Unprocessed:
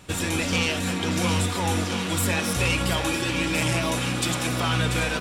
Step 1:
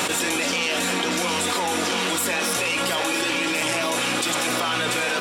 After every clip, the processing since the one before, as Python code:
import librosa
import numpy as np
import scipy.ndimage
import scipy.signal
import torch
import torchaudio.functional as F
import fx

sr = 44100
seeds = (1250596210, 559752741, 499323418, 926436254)

y = scipy.signal.sosfilt(scipy.signal.butter(2, 350.0, 'highpass', fs=sr, output='sos'), x)
y = fx.env_flatten(y, sr, amount_pct=100)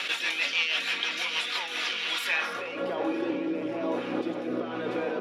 y = fx.peak_eq(x, sr, hz=8000.0, db=-13.5, octaves=0.5)
y = fx.filter_sweep_bandpass(y, sr, from_hz=2800.0, to_hz=370.0, start_s=2.24, end_s=2.99, q=1.2)
y = fx.rotary_switch(y, sr, hz=6.3, then_hz=1.1, switch_at_s=1.29)
y = y * 10.0 ** (2.0 / 20.0)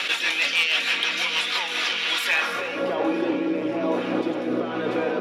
y = np.clip(x, -10.0 ** (-18.5 / 20.0), 10.0 ** (-18.5 / 20.0))
y = fx.rev_gated(y, sr, seeds[0], gate_ms=360, shape='rising', drr_db=11.5)
y = y * 10.0 ** (5.5 / 20.0)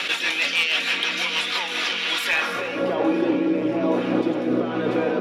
y = fx.low_shelf(x, sr, hz=320.0, db=7.0)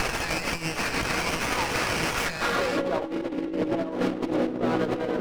y = fx.over_compress(x, sr, threshold_db=-25.0, ratio=-0.5)
y = fx.running_max(y, sr, window=9)